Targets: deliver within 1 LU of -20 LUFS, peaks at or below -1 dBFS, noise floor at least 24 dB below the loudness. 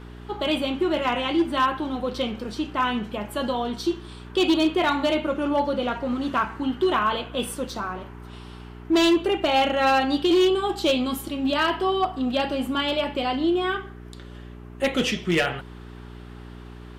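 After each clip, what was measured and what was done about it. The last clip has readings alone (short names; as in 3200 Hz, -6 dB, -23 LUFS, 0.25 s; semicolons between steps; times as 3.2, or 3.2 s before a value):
clipped 0.8%; flat tops at -14.5 dBFS; hum 60 Hz; harmonics up to 420 Hz; hum level -40 dBFS; loudness -24.0 LUFS; peak -14.5 dBFS; loudness target -20.0 LUFS
-> clip repair -14.5 dBFS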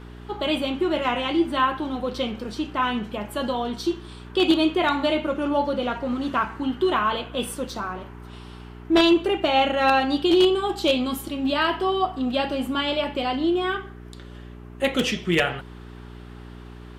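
clipped 0.0%; hum 60 Hz; harmonics up to 420 Hz; hum level -39 dBFS
-> de-hum 60 Hz, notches 7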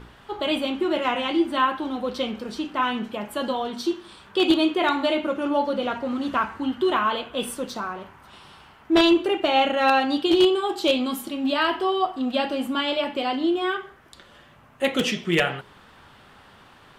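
hum none; loudness -23.5 LUFS; peak -5.5 dBFS; loudness target -20.0 LUFS
-> gain +3.5 dB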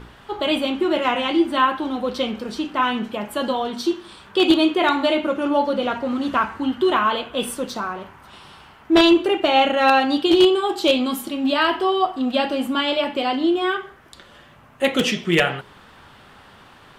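loudness -20.0 LUFS; peak -2.0 dBFS; noise floor -48 dBFS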